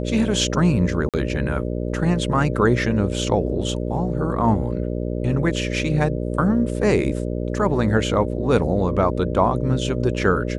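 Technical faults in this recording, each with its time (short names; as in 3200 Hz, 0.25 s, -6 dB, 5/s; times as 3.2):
buzz 60 Hz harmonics 10 -25 dBFS
1.09–1.14 gap 47 ms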